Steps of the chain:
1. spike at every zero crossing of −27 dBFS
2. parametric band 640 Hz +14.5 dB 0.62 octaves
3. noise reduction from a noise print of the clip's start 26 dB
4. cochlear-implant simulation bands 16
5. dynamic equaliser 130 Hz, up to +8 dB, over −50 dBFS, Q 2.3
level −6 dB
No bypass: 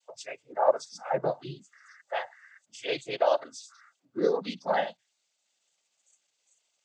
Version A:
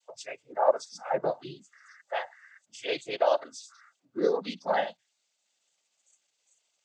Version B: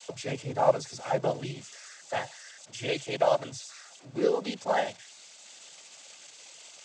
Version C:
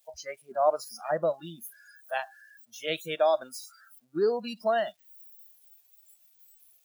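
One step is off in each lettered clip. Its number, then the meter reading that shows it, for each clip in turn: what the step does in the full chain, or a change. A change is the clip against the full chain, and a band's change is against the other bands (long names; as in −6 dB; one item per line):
5, 125 Hz band −5.0 dB
3, 125 Hz band +6.0 dB
4, 125 Hz band −3.0 dB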